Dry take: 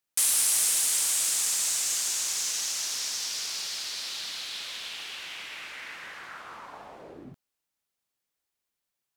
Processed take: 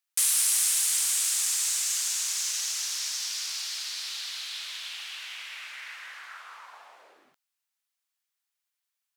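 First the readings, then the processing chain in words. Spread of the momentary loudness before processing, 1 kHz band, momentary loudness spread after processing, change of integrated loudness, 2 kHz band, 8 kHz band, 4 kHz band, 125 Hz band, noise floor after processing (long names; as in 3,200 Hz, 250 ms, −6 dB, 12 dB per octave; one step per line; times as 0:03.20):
20 LU, −3.5 dB, 19 LU, 0.0 dB, −0.5 dB, 0.0 dB, 0.0 dB, can't be measured, −85 dBFS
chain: high-pass filter 1,100 Hz 12 dB per octave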